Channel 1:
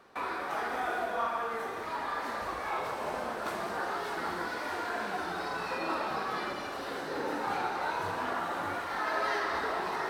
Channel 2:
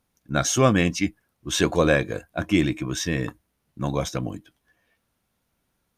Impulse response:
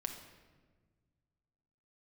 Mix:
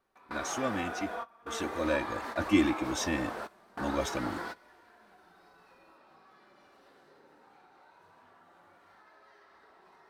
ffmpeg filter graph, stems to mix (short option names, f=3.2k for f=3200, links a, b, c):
-filter_complex "[0:a]acompressor=threshold=-38dB:ratio=6,volume=2.5dB,asplit=2[a][b];[b]volume=-23.5dB[c];[1:a]aecho=1:1:3.4:0.87,volume=-8dB,afade=t=in:st=1.77:d=0.48:silence=0.354813,asplit=2[d][e];[e]apad=whole_len=445088[f];[a][f]sidechaingate=range=-33dB:threshold=-55dB:ratio=16:detection=peak[g];[2:a]atrim=start_sample=2205[h];[c][h]afir=irnorm=-1:irlink=0[i];[g][d][i]amix=inputs=3:normalize=0"